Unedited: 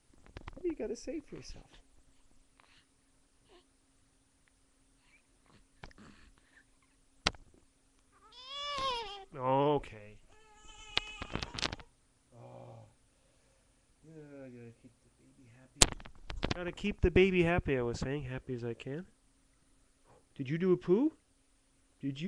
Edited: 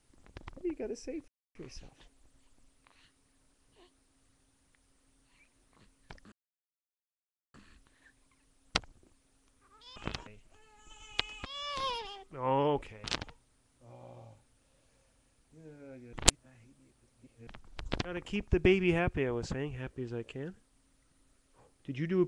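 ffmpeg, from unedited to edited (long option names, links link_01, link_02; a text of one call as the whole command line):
ffmpeg -i in.wav -filter_complex "[0:a]asplit=9[link_01][link_02][link_03][link_04][link_05][link_06][link_07][link_08][link_09];[link_01]atrim=end=1.28,asetpts=PTS-STARTPTS,afade=type=out:start_time=1.276:duration=0.004:curve=hsin,apad=pad_dur=0.27[link_10];[link_02]atrim=start=1.28:end=6.05,asetpts=PTS-STARTPTS,afade=type=in:duration=0.004:curve=hsin,afade=type=out:start_time=4.766:duration=0.004:curve=hsin,apad=pad_dur=1.22[link_11];[link_03]atrim=start=6.05:end=8.472,asetpts=PTS-STARTPTS,afade=type=in:duration=0.004:curve=hsin[link_12];[link_04]atrim=start=11.238:end=11.552[link_13];[link_05]atrim=start=10.048:end=11.242[link_14];[link_06]atrim=start=8.468:end=10.052[link_15];[link_07]atrim=start=11.548:end=14.642[link_16];[link_08]atrim=start=14.638:end=15.982,asetpts=PTS-STARTPTS,areverse[link_17];[link_09]atrim=start=15.978[link_18];[link_10][link_11][link_12]concat=n=3:v=0:a=1[link_19];[link_19][link_13]acrossfade=duration=0.004:curve1=hsin:curve2=hsin[link_20];[link_20][link_14]acrossfade=duration=0.004:curve1=hsin:curve2=hsin[link_21];[link_21][link_15]acrossfade=duration=0.004:curve1=hsin:curve2=hsin[link_22];[link_22][link_16]acrossfade=duration=0.004:curve1=hsin:curve2=hsin[link_23];[link_23][link_17]acrossfade=duration=0.004:curve1=hsin:curve2=hsin[link_24];[link_24][link_18]acrossfade=duration=0.004:curve1=hsin:curve2=hsin" out.wav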